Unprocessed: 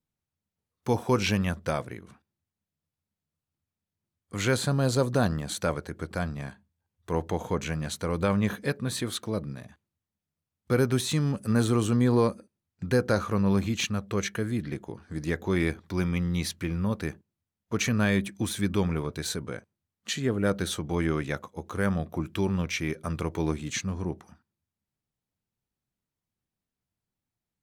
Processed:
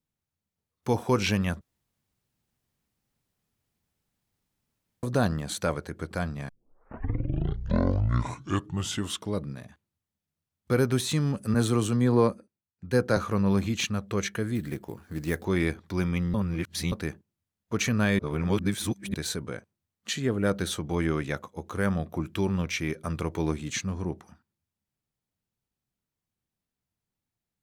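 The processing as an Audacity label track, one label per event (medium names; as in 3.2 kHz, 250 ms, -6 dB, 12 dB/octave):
1.610000	5.030000	room tone
6.490000	6.490000	tape start 2.98 s
11.540000	13.170000	three bands expanded up and down depth 70%
14.550000	15.450000	sample-rate reducer 12 kHz
16.340000	16.920000	reverse
18.190000	19.140000	reverse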